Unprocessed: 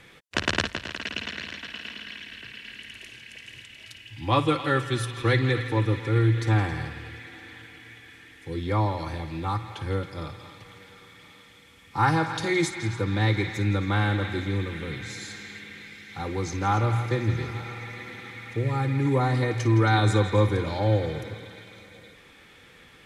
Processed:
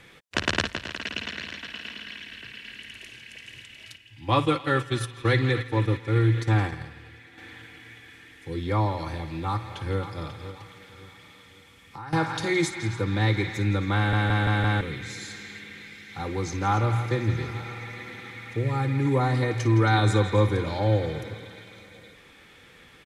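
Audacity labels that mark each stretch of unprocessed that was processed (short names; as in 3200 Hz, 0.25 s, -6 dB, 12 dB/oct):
3.960000	7.380000	gate -30 dBFS, range -7 dB
8.970000	10.010000	echo throw 0.54 s, feedback 35%, level -12.5 dB
10.510000	12.130000	compressor, threshold -37 dBFS
13.960000	13.960000	stutter in place 0.17 s, 5 plays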